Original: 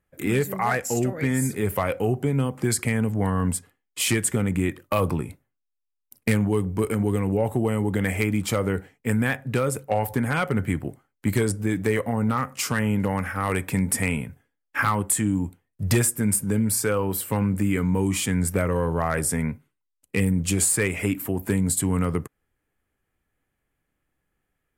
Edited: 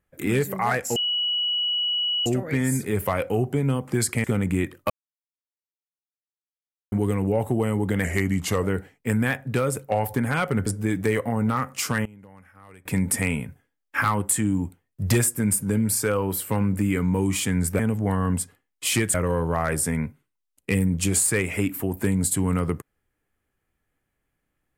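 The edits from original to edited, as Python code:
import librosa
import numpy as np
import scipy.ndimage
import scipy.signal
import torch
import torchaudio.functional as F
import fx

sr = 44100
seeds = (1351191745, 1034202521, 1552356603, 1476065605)

y = fx.edit(x, sr, fx.insert_tone(at_s=0.96, length_s=1.3, hz=2930.0, db=-21.5),
    fx.move(start_s=2.94, length_s=1.35, to_s=18.6),
    fx.silence(start_s=4.95, length_s=2.02),
    fx.speed_span(start_s=8.09, length_s=0.54, speed=0.91),
    fx.cut(start_s=10.66, length_s=0.81),
    fx.fade_down_up(start_s=12.73, length_s=1.06, db=-23.5, fade_s=0.13, curve='log'), tone=tone)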